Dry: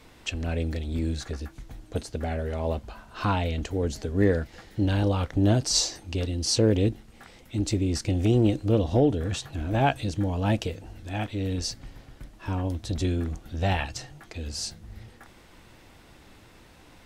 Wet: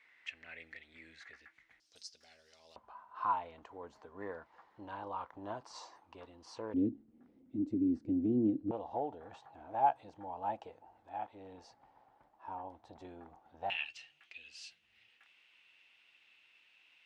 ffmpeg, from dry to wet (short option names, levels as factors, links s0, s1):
-af "asetnsamples=n=441:p=0,asendcmd='1.8 bandpass f 5200;2.76 bandpass f 1000;6.74 bandpass f 270;8.71 bandpass f 850;13.7 bandpass f 2700',bandpass=f=2000:t=q:w=5.7:csg=0"